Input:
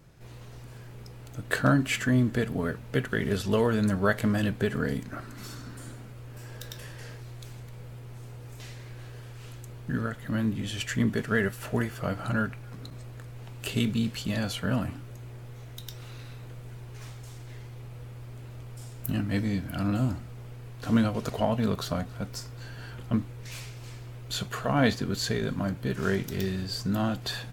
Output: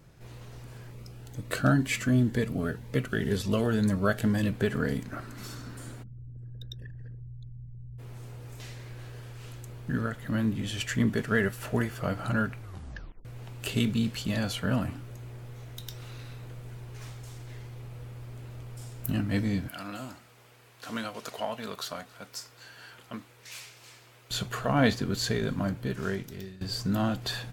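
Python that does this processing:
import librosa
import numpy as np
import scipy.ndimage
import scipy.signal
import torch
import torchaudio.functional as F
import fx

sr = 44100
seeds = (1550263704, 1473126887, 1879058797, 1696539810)

y = fx.notch_cascade(x, sr, direction='rising', hz=2.0, at=(0.9, 4.52), fade=0.02)
y = fx.envelope_sharpen(y, sr, power=3.0, at=(6.02, 7.98), fade=0.02)
y = fx.highpass(y, sr, hz=1100.0, slope=6, at=(19.68, 24.31))
y = fx.edit(y, sr, fx.tape_stop(start_s=12.58, length_s=0.67),
    fx.fade_out_to(start_s=25.66, length_s=0.95, floor_db=-19.5), tone=tone)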